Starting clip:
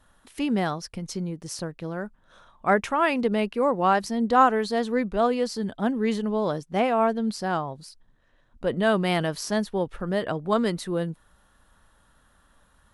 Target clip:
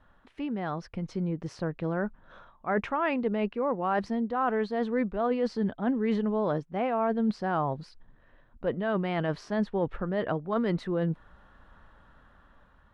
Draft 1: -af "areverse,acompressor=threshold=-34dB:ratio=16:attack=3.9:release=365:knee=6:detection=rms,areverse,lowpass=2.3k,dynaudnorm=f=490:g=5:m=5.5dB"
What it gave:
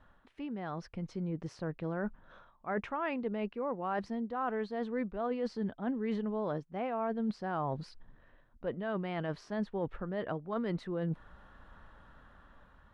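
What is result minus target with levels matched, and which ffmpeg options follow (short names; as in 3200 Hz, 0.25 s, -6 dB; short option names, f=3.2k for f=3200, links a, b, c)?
compressor: peak gain reduction +7 dB
-af "areverse,acompressor=threshold=-26.5dB:ratio=16:attack=3.9:release=365:knee=6:detection=rms,areverse,lowpass=2.3k,dynaudnorm=f=490:g=5:m=5.5dB"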